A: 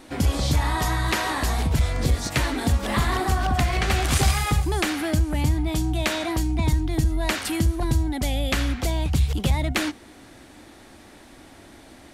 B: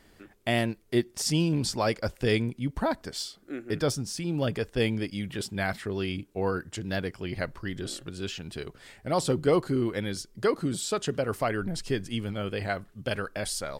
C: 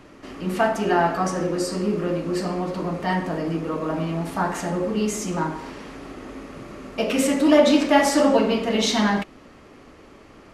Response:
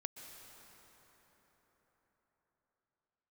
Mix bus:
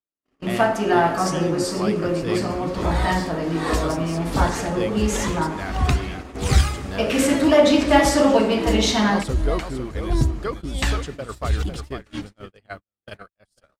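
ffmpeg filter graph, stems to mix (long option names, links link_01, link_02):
-filter_complex "[0:a]equalizer=frequency=12000:width=1.9:gain=-10,aphaser=in_gain=1:out_gain=1:delay=3.9:decay=0.46:speed=0.25:type=triangular,aeval=exprs='val(0)*pow(10,-26*(0.5-0.5*cos(2*PI*1.4*n/s))/20)':channel_layout=same,adelay=2300,volume=-2.5dB,asplit=2[link_01][link_02];[link_02]volume=-4dB[link_03];[1:a]equalizer=frequency=1200:width=4.5:gain=7,volume=-4.5dB,asplit=3[link_04][link_05][link_06];[link_05]volume=-23dB[link_07];[link_06]volume=-7.5dB[link_08];[2:a]bandreject=frequency=60:width_type=h:width=6,bandreject=frequency=120:width_type=h:width=6,bandreject=frequency=180:width_type=h:width=6,bandreject=frequency=240:width_type=h:width=6,bandreject=frequency=300:width_type=h:width=6,volume=0dB,asplit=2[link_09][link_10];[link_10]volume=-10.5dB[link_11];[3:a]atrim=start_sample=2205[link_12];[link_03][link_07][link_11]amix=inputs=3:normalize=0[link_13];[link_13][link_12]afir=irnorm=-1:irlink=0[link_14];[link_08]aecho=0:1:500:1[link_15];[link_01][link_04][link_09][link_14][link_15]amix=inputs=5:normalize=0,agate=range=-57dB:threshold=-31dB:ratio=16:detection=peak"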